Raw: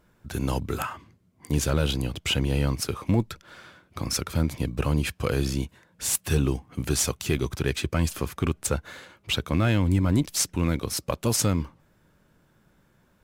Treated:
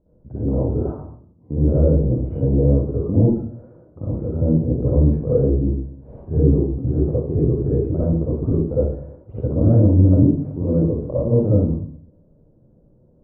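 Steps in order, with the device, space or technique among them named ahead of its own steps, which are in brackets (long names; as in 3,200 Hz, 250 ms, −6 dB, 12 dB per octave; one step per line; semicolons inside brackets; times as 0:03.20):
next room (low-pass filter 600 Hz 24 dB per octave; convolution reverb RT60 0.55 s, pre-delay 49 ms, DRR −9.5 dB)
level −1 dB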